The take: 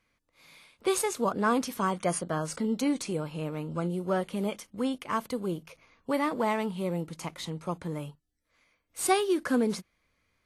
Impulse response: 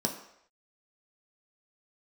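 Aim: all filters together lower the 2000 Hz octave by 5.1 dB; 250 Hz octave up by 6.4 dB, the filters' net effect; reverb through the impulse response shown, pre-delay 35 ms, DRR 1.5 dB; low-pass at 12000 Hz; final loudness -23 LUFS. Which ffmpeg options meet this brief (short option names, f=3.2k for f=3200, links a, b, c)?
-filter_complex "[0:a]lowpass=12k,equalizer=f=250:t=o:g=8,equalizer=f=2k:t=o:g=-7,asplit=2[a][b];[1:a]atrim=start_sample=2205,adelay=35[c];[b][c]afir=irnorm=-1:irlink=0,volume=-7.5dB[d];[a][d]amix=inputs=2:normalize=0,volume=-3.5dB"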